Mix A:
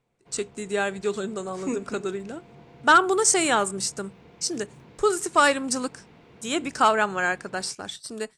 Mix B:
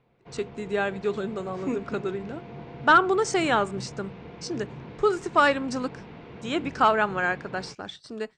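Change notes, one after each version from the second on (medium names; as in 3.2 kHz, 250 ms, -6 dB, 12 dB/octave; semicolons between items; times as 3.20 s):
background +9.0 dB; master: add distance through air 170 m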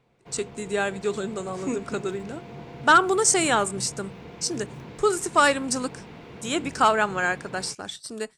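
master: remove distance through air 170 m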